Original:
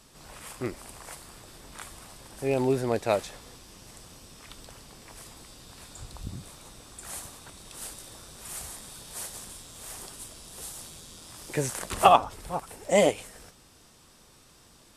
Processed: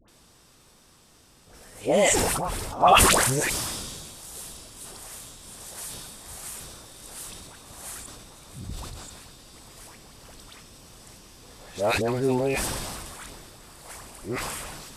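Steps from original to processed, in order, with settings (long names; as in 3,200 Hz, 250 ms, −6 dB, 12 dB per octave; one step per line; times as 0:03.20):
played backwards from end to start
surface crackle 21 per second −57 dBFS
all-pass dispersion highs, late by 83 ms, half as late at 1,100 Hz
level that may fall only so fast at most 27 dB per second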